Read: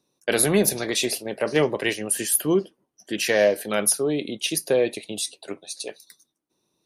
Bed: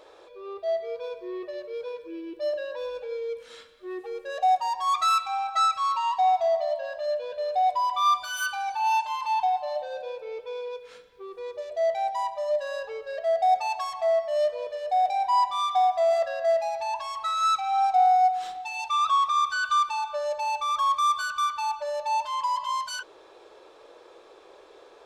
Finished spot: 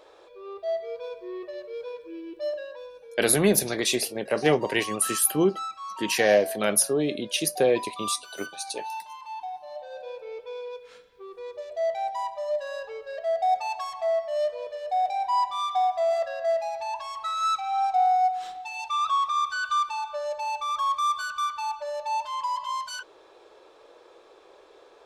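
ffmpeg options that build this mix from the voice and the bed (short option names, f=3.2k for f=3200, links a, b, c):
-filter_complex "[0:a]adelay=2900,volume=-1dB[a];[1:a]volume=8dB,afade=t=out:st=2.46:d=0.47:silence=0.316228,afade=t=in:st=9.63:d=0.53:silence=0.334965[b];[a][b]amix=inputs=2:normalize=0"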